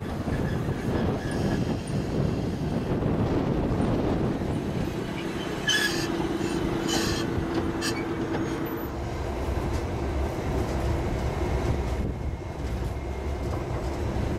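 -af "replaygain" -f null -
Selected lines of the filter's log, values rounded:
track_gain = +10.7 dB
track_peak = 0.194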